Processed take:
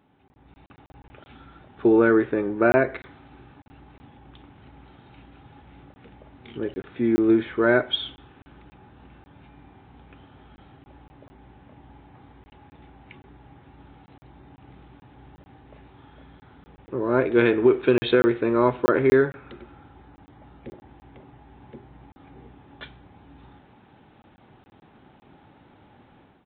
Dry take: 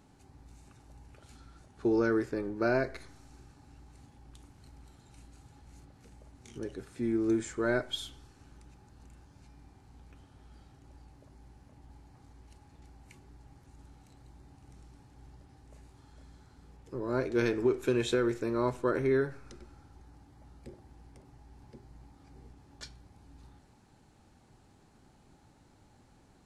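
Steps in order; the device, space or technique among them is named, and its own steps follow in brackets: call with lost packets (HPF 170 Hz 6 dB/oct; downsampling 8000 Hz; AGC gain up to 11 dB; packet loss packets of 20 ms random)

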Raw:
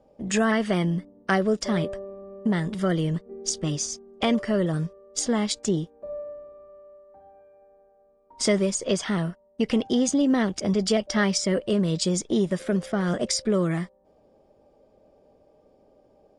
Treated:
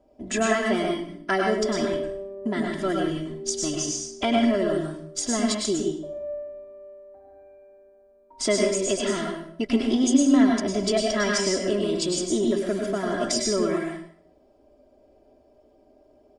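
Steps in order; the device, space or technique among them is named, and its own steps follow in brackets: microphone above a desk (comb 3 ms, depth 74%; reverb RT60 0.60 s, pre-delay 95 ms, DRR 0.5 dB); gain -3 dB

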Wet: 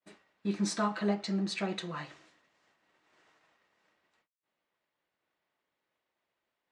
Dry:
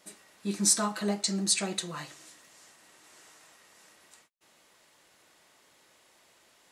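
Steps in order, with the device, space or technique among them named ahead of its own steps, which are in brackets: hearing-loss simulation (LPF 3000 Hz 12 dB/oct; expander -52 dBFS); 1.15–1.69 high shelf 4600 Hz -5.5 dB

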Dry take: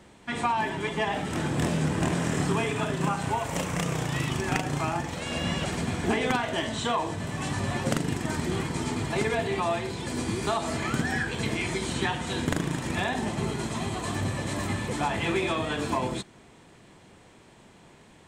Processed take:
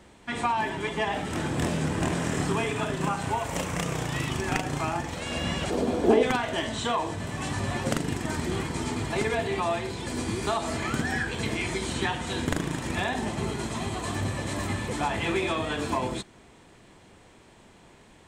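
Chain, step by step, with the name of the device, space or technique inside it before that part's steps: low shelf boost with a cut just above (low shelf 64 Hz +5.5 dB; bell 150 Hz -3.5 dB 0.91 oct); 5.7–6.23 ten-band EQ 125 Hz -11 dB, 250 Hz +6 dB, 500 Hz +12 dB, 2000 Hz -7 dB, 8000 Hz -5 dB

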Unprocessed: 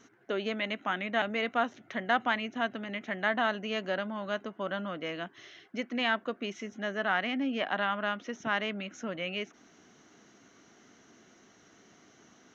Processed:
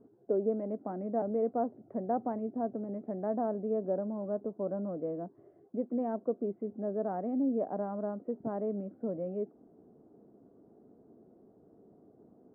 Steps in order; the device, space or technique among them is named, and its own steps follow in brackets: under water (LPF 670 Hz 24 dB/oct; bell 440 Hz +4.5 dB 0.35 oct); gain +1.5 dB

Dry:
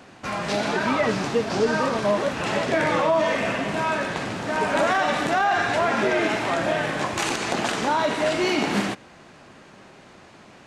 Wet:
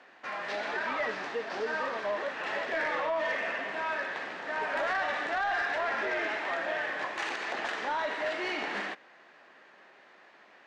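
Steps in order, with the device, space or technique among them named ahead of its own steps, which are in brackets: intercom (BPF 460–3900 Hz; bell 1800 Hz +8 dB 0.32 oct; soft clip -15 dBFS, distortion -19 dB); gain -8 dB

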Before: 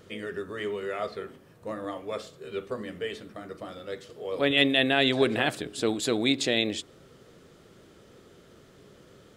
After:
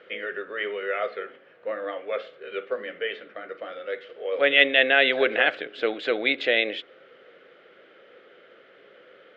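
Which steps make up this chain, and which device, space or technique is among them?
phone earpiece (speaker cabinet 480–3200 Hz, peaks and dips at 520 Hz +8 dB, 980 Hz -7 dB, 1500 Hz +7 dB, 2100 Hz +7 dB, 3000 Hz +4 dB); gain +2.5 dB

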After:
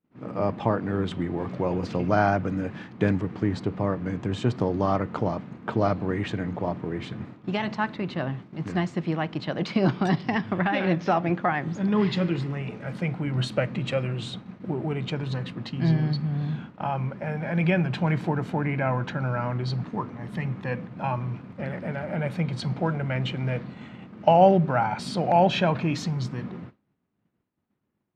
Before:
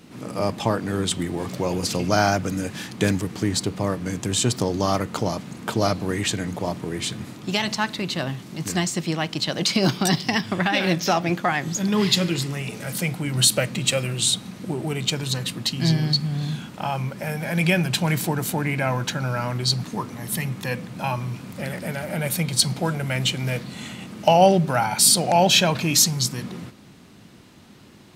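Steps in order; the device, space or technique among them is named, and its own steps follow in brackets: hearing-loss simulation (LPF 1800 Hz 12 dB/oct; expander -32 dBFS); gain -1.5 dB

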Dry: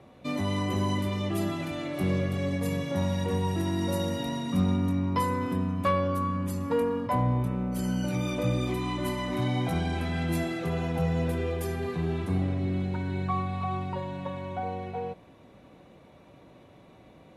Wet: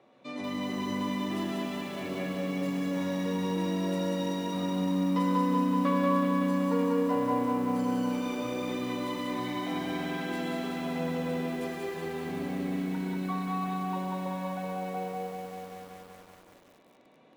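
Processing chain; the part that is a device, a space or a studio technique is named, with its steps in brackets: supermarket ceiling speaker (BPF 280–6700 Hz; reverb RT60 1.2 s, pre-delay 93 ms, DRR 2 dB); lo-fi delay 0.189 s, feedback 80%, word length 8-bit, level -3.5 dB; gain -6 dB

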